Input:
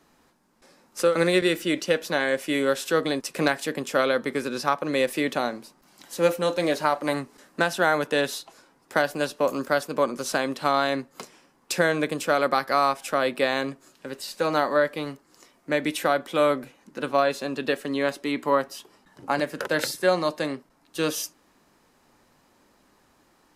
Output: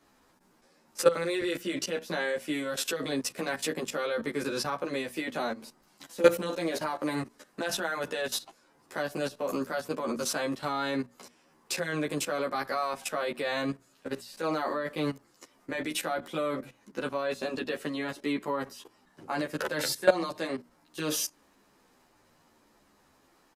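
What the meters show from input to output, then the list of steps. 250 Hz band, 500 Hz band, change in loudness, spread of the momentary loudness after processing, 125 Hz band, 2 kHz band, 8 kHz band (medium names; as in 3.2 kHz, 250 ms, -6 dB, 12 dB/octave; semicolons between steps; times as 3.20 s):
-5.5 dB, -6.5 dB, -6.5 dB, 11 LU, -5.5 dB, -7.5 dB, -1.0 dB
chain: level held to a coarse grid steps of 17 dB; hum notches 60/120/180/240 Hz; endless flanger 11.7 ms -0.65 Hz; trim +6.5 dB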